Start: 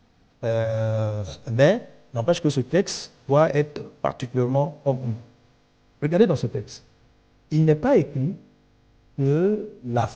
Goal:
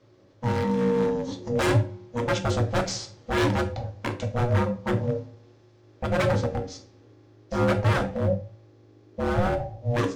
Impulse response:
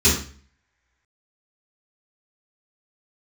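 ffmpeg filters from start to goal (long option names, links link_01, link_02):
-filter_complex "[0:a]aeval=exprs='val(0)*sin(2*PI*360*n/s)':channel_layout=same,aeval=exprs='0.1*(abs(mod(val(0)/0.1+3,4)-2)-1)':channel_layout=same,asplit=2[link_01][link_02];[1:a]atrim=start_sample=2205,asetrate=61740,aresample=44100[link_03];[link_02][link_03]afir=irnorm=-1:irlink=0,volume=-20.5dB[link_04];[link_01][link_04]amix=inputs=2:normalize=0"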